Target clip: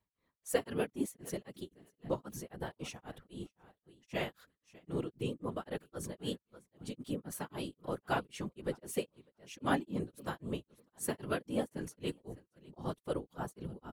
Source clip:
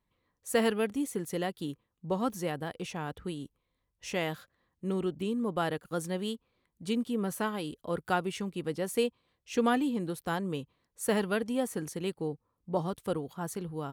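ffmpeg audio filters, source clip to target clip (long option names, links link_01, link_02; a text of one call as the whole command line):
ffmpeg -i in.wav -af "aecho=1:1:604|1208:0.0891|0.016,afftfilt=real='hypot(re,im)*cos(2*PI*random(0))':imag='hypot(re,im)*sin(2*PI*random(1))':win_size=512:overlap=0.75,tremolo=f=3.8:d=1,volume=3.5dB" out.wav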